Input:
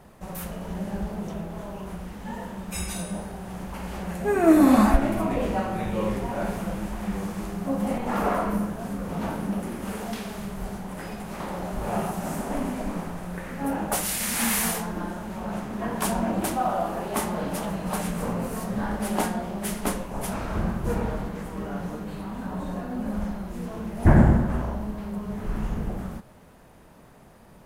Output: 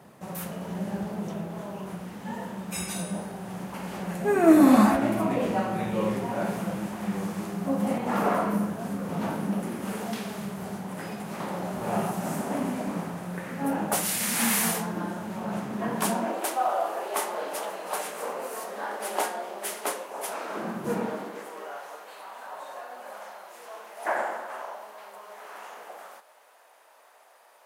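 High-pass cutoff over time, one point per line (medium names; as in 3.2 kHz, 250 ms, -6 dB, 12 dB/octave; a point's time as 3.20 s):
high-pass 24 dB/octave
15.95 s 110 Hz
16.40 s 400 Hz
20.37 s 400 Hz
20.92 s 160 Hz
21.80 s 590 Hz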